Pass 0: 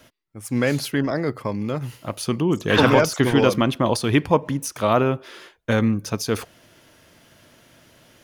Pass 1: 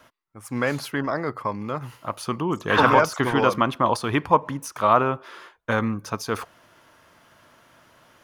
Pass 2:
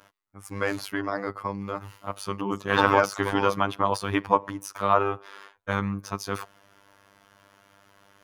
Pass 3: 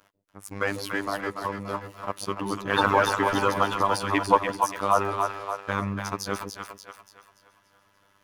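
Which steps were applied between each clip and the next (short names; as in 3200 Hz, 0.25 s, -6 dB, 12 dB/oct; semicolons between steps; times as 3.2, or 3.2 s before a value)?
bell 1100 Hz +12.5 dB 1.3 oct; gain -6.5 dB
robotiser 99.3 Hz; gain -1 dB
split-band echo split 510 Hz, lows 0.139 s, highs 0.289 s, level -5 dB; harmonic-percussive split harmonic -7 dB; sample leveller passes 1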